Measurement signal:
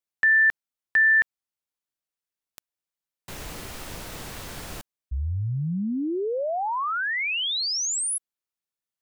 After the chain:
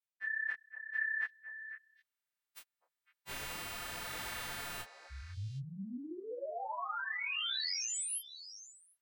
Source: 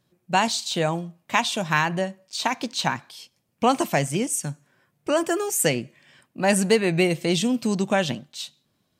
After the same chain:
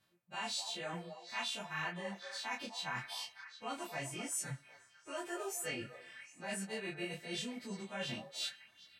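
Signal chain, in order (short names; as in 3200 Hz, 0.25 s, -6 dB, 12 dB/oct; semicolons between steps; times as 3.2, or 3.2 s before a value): frequency quantiser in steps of 2 st; tone controls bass +1 dB, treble -14 dB; reverse; compressor 6:1, threshold -36 dBFS; reverse; tilt shelf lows -3.5 dB; on a send: delay with a stepping band-pass 0.252 s, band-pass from 670 Hz, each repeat 1.4 oct, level -7 dB; on the sum: detuned doubles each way 32 cents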